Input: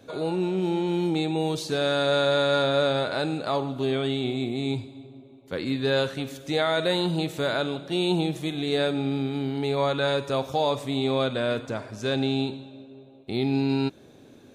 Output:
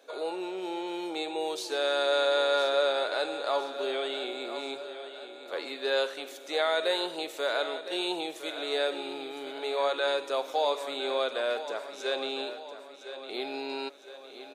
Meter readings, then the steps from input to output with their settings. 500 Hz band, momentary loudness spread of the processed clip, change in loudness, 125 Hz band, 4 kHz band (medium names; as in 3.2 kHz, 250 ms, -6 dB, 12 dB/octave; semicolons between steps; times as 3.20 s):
-3.5 dB, 13 LU, -4.5 dB, under -35 dB, -2.0 dB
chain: high-pass 420 Hz 24 dB/octave; feedback delay 1009 ms, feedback 51%, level -12 dB; trim -2.5 dB